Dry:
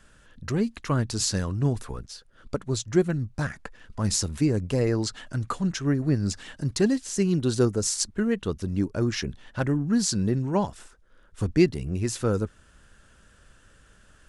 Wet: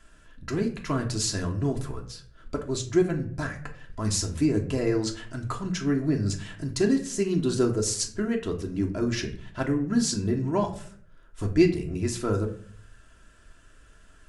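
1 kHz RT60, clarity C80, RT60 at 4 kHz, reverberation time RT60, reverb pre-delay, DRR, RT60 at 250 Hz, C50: 0.45 s, 15.0 dB, 0.35 s, 0.55 s, 3 ms, 0.5 dB, 0.70 s, 11.0 dB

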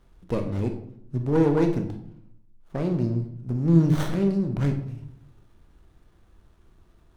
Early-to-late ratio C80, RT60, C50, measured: 12.0 dB, 0.65 s, 9.0 dB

